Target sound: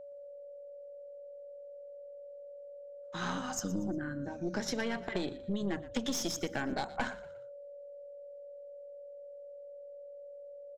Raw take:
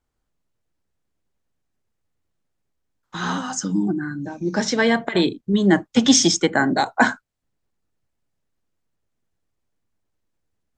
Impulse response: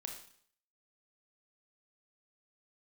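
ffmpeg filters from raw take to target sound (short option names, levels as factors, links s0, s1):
-filter_complex "[0:a]aeval=exprs='(tanh(4.47*val(0)+0.65)-tanh(0.65))/4.47':c=same,acompressor=threshold=0.0631:ratio=6,aeval=exprs='val(0)+0.0112*sin(2*PI*570*n/s)':c=same,asplit=2[s0][s1];[s1]asplit=3[s2][s3][s4];[s2]adelay=118,afreqshift=-44,volume=0.15[s5];[s3]adelay=236,afreqshift=-88,volume=0.0582[s6];[s4]adelay=354,afreqshift=-132,volume=0.0226[s7];[s5][s6][s7]amix=inputs=3:normalize=0[s8];[s0][s8]amix=inputs=2:normalize=0,volume=0.473"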